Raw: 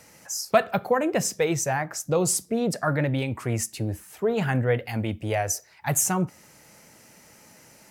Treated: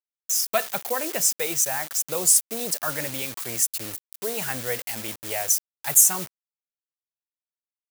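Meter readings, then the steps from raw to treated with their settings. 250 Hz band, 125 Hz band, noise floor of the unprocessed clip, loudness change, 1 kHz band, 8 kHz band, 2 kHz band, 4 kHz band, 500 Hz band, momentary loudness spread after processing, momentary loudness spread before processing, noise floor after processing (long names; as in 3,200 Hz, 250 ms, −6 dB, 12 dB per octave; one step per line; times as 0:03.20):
−11.0 dB, −15.0 dB, −54 dBFS, +3.0 dB, −4.5 dB, +7.5 dB, −1.5 dB, +5.0 dB, −6.5 dB, 13 LU, 7 LU, below −85 dBFS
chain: bit-depth reduction 6 bits, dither none
RIAA equalisation recording
level −4 dB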